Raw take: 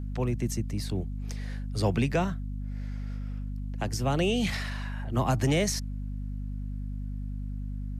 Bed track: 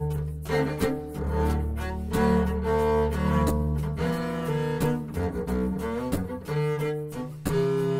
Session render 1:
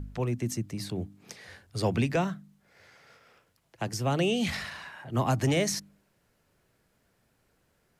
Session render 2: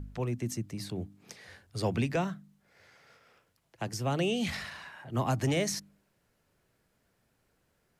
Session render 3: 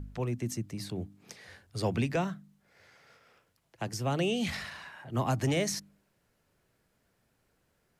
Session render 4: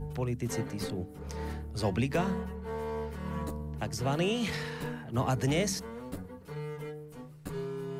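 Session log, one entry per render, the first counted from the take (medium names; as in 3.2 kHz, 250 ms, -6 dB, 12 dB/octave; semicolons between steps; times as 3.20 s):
de-hum 50 Hz, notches 6
trim -3 dB
no audible change
add bed track -12.5 dB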